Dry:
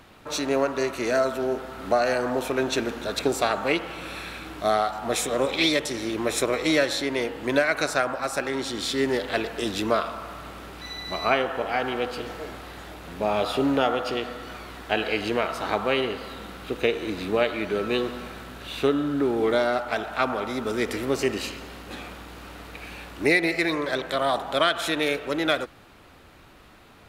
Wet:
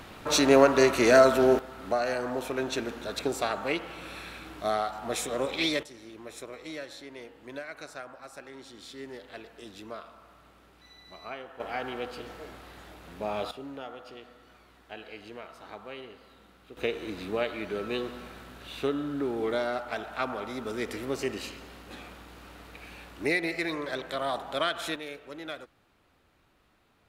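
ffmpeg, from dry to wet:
-af "asetnsamples=n=441:p=0,asendcmd='1.59 volume volume -6dB;5.83 volume volume -18dB;11.6 volume volume -8dB;13.51 volume volume -18.5dB;16.77 volume volume -7dB;24.96 volume volume -15.5dB',volume=5dB"

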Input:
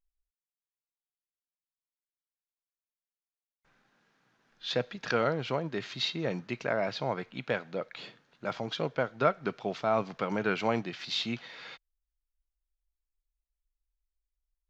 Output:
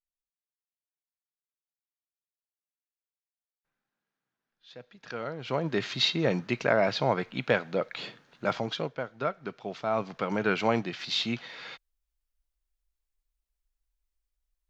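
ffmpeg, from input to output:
-af "volume=13.5dB,afade=t=in:st=4.75:d=0.65:silence=0.251189,afade=t=in:st=5.4:d=0.31:silence=0.251189,afade=t=out:st=8.48:d=0.47:silence=0.298538,afade=t=in:st=9.57:d=0.97:silence=0.421697"

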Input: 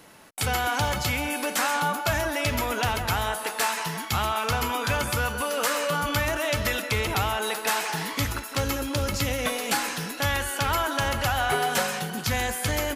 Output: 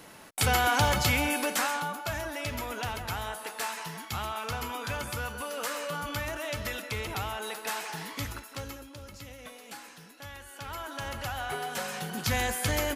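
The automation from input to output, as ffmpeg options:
-af "volume=18dB,afade=t=out:st=1.23:d=0.64:silence=0.334965,afade=t=out:st=8.29:d=0.62:silence=0.298538,afade=t=in:st=10.43:d=0.73:silence=0.354813,afade=t=in:st=11.78:d=0.52:silence=0.398107"

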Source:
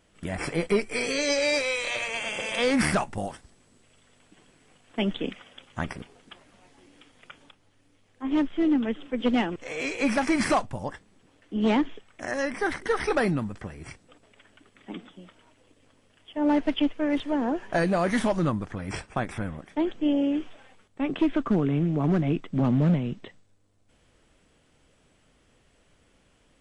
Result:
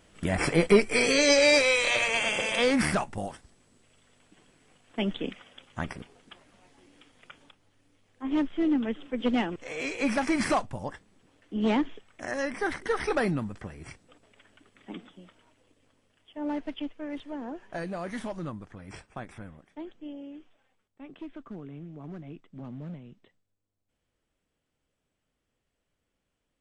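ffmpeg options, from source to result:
-af "volume=4.5dB,afade=t=out:st=2.23:d=0.59:silence=0.446684,afade=t=out:st=14.93:d=1.84:silence=0.375837,afade=t=out:st=19.3:d=0.88:silence=0.446684"

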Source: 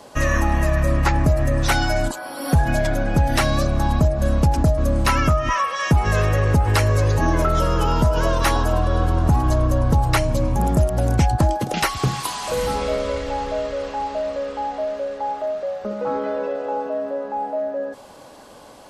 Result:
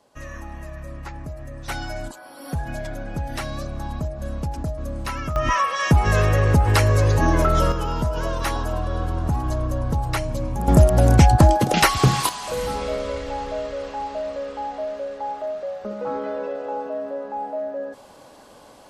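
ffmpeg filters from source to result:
-af "asetnsamples=n=441:p=0,asendcmd='1.68 volume volume -10.5dB;5.36 volume volume 0.5dB;7.72 volume volume -6dB;10.68 volume volume 4.5dB;12.29 volume volume -3.5dB',volume=-17dB"

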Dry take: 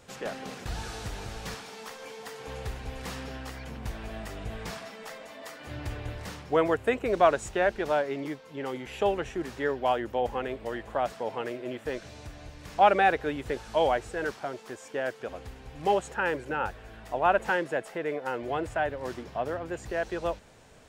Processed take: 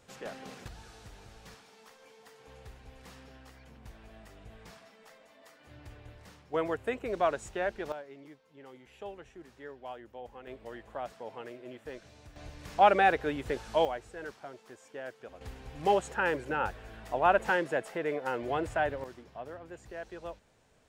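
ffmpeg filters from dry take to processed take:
-af "asetnsamples=n=441:p=0,asendcmd='0.68 volume volume -14dB;6.54 volume volume -7dB;7.92 volume volume -17dB;10.47 volume volume -10dB;12.36 volume volume -1.5dB;13.85 volume volume -10.5dB;15.41 volume volume -1dB;19.04 volume volume -11.5dB',volume=-6.5dB"

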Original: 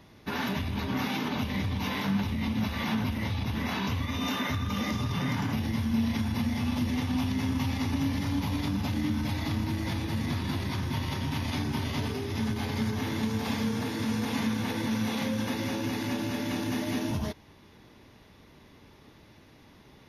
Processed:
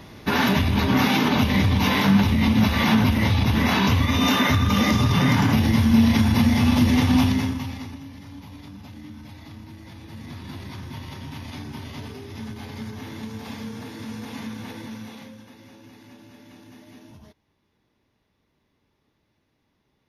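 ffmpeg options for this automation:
-af "volume=17.5dB,afade=t=out:st=7.2:d=0.36:silence=0.281838,afade=t=out:st=7.56:d=0.45:silence=0.266073,afade=t=in:st=9.92:d=0.69:silence=0.473151,afade=t=out:st=14.69:d=0.76:silence=0.266073"

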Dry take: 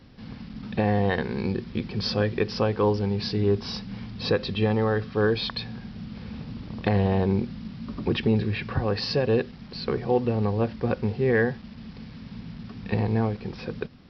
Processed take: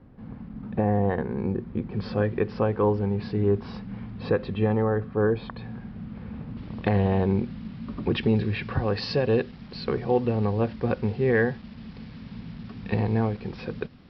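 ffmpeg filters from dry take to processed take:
-af "asetnsamples=n=441:p=0,asendcmd='1.92 lowpass f 1800;4.82 lowpass f 1300;5.64 lowpass f 1800;6.57 lowpass f 3200;8.15 lowpass f 4500',lowpass=1.2k"

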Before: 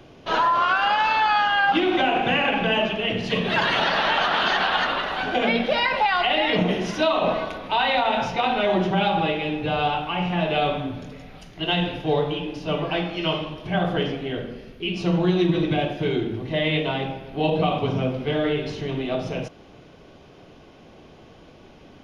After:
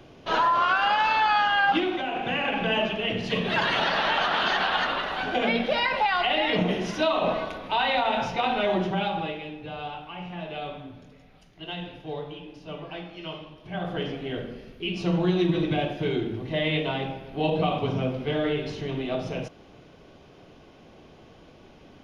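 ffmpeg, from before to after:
-af "volume=14.5dB,afade=t=out:st=1.71:d=0.3:silence=0.398107,afade=t=in:st=2.01:d=0.76:silence=0.446684,afade=t=out:st=8.64:d=0.91:silence=0.334965,afade=t=in:st=13.6:d=0.75:silence=0.334965"

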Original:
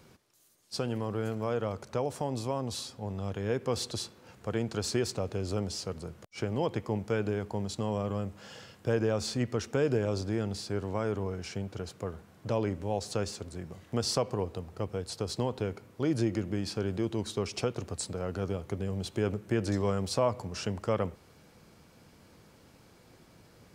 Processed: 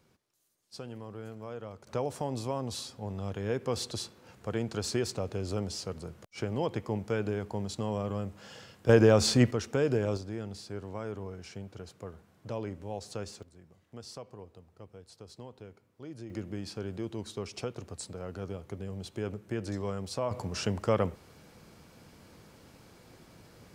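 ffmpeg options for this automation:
-af "asetnsamples=n=441:p=0,asendcmd='1.87 volume volume -1dB;8.89 volume volume 8dB;9.51 volume volume 0dB;10.17 volume volume -6.5dB;13.43 volume volume -15.5dB;16.3 volume volume -5.5dB;20.31 volume volume 2.5dB',volume=-10dB"

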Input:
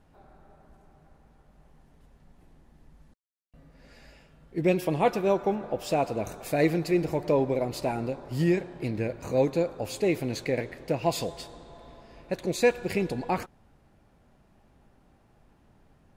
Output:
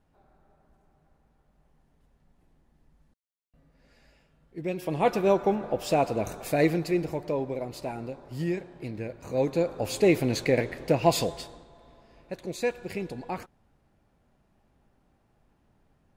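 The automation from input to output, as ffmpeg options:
-af "volume=12dB,afade=t=in:st=4.74:d=0.46:silence=0.316228,afade=t=out:st=6.39:d=0.94:silence=0.421697,afade=t=in:st=9.24:d=0.79:silence=0.316228,afade=t=out:st=11.18:d=0.51:silence=0.298538"

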